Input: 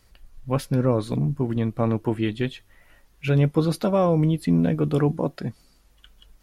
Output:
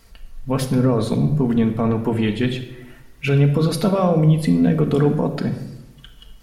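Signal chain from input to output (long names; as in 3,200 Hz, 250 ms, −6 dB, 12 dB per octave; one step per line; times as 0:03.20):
brickwall limiter −17.5 dBFS, peak gain reduction 9.5 dB
convolution reverb RT60 0.95 s, pre-delay 4 ms, DRR 3.5 dB
tape wow and flutter 26 cents
level +6.5 dB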